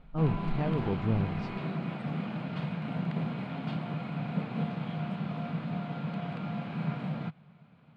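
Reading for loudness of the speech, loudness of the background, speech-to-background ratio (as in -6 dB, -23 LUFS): -32.5 LUFS, -35.0 LUFS, 2.5 dB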